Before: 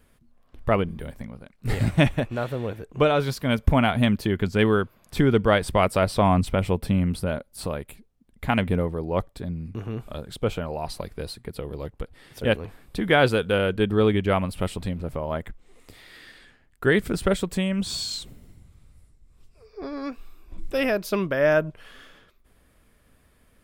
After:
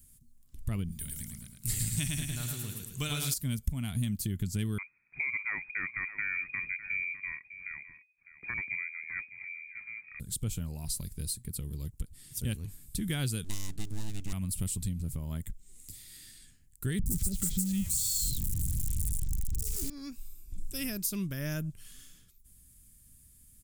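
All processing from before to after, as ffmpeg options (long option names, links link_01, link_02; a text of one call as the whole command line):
ffmpeg -i in.wav -filter_complex "[0:a]asettb=1/sr,asplit=3[link_01][link_02][link_03];[link_01]atrim=end=0.924[link_04];[link_02]atrim=start=0.92:end=3.34,asetpts=PTS-STARTPTS,afade=type=in:duration=0.004:curve=qsin,afade=type=out:start_time=2.416:duration=0.004:curve=qsin,tiltshelf=frequency=810:gain=-6.5,bandreject=frequency=540:width=6.9,aecho=1:1:107|214|321|428|535|642:0.631|0.29|0.134|0.0614|0.0283|0.013,atrim=end_sample=106722[link_05];[link_03]atrim=start=3.336[link_06];[link_04][link_05]acrossfade=duration=0.004:curve1=hsin:curve2=qsin[link_07];[link_07][link_06]acrossfade=duration=0.004:curve1=qsin:curve2=hsin,asettb=1/sr,asplit=3[link_08][link_09][link_10];[link_08]atrim=end=4.784[link_11];[link_09]atrim=start=4.78:end=10.2,asetpts=PTS-STARTPTS,afade=type=in:duration=0.004:curve=qsin,afade=type=out:start_time=5.416:duration=0.004:curve=qsin,aecho=1:1:604:0.188,atrim=end_sample=239022,lowpass=frequency=2100:width_type=q:width=0.5098,lowpass=frequency=2100:width_type=q:width=0.6013,lowpass=frequency=2100:width_type=q:width=0.9,lowpass=frequency=2100:width_type=q:width=2.563,afreqshift=-2500[link_12];[link_10]atrim=start=10.196[link_13];[link_11][link_12]acrossfade=duration=0.004:curve1=hsin:curve2=qsin[link_14];[link_14][link_13]acrossfade=duration=0.004:curve1=qsin:curve2=hsin,asettb=1/sr,asplit=3[link_15][link_16][link_17];[link_15]atrim=end=13.444[link_18];[link_16]atrim=start=13.44:end=14.33,asetpts=PTS-STARTPTS,afade=type=in:duration=0.004:curve=qsin,afade=type=out:start_time=0.886:duration=0.004:curve=qsin,highshelf=frequency=11000:gain=-10,aeval=exprs='abs(val(0))':channel_layout=same[link_19];[link_17]atrim=start=14.326[link_20];[link_18][link_19]acrossfade=duration=0.004:curve1=hsin:curve2=qsin[link_21];[link_21][link_20]acrossfade=duration=0.004:curve1=qsin:curve2=hsin,asettb=1/sr,asplit=3[link_22][link_23][link_24];[link_22]atrim=end=16.994[link_25];[link_23]atrim=start=16.99:end=19.9,asetpts=PTS-STARTPTS,afade=type=in:duration=0.004:curve=qsin,afade=type=out:start_time=2.906:duration=0.004:curve=qsin,aeval=exprs='val(0)+0.5*0.0562*sgn(val(0))':channel_layout=same,lowshelf=frequency=170:gain=9.5,acrossover=split=700|4800[link_26][link_27][link_28];[link_28]adelay=70[link_29];[link_27]adelay=150[link_30];[link_26][link_30][link_29]amix=inputs=3:normalize=0,atrim=end_sample=128331[link_31];[link_24]atrim=start=19.896[link_32];[link_25][link_31]acrossfade=duration=0.004:curve1=hsin:curve2=qsin[link_33];[link_33][link_32]acrossfade=duration=0.004:curve1=qsin:curve2=hsin,firequalizer=gain_entry='entry(130,0);entry(520,-25);entry(2200,-13);entry(7200,12)':delay=0.05:min_phase=1,acompressor=threshold=-29dB:ratio=4" out.wav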